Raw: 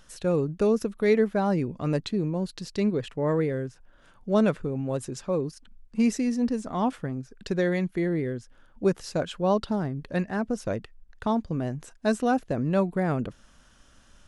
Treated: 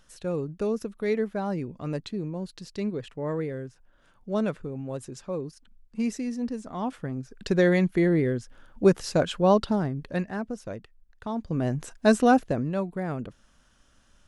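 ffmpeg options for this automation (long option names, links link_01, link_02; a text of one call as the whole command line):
ffmpeg -i in.wav -af "volume=16.5dB,afade=type=in:start_time=6.85:duration=0.8:silence=0.334965,afade=type=out:start_time=9.35:duration=1.26:silence=0.266073,afade=type=in:start_time=11.32:duration=0.44:silence=0.251189,afade=type=out:start_time=12.33:duration=0.4:silence=0.316228" out.wav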